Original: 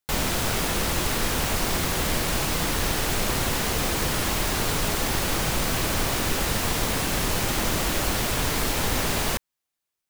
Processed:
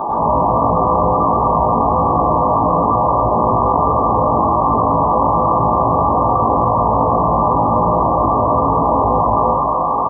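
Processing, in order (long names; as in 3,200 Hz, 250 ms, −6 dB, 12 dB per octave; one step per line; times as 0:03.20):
linear delta modulator 32 kbit/s, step −24.5 dBFS
linear-phase brick-wall low-pass 1,200 Hz
spectral tilt +3 dB per octave
double-tracking delay 18 ms −3 dB
hum removal 51.74 Hz, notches 11
convolution reverb RT60 1.1 s, pre-delay 98 ms, DRR −14 dB
envelope flattener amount 70%
level −7 dB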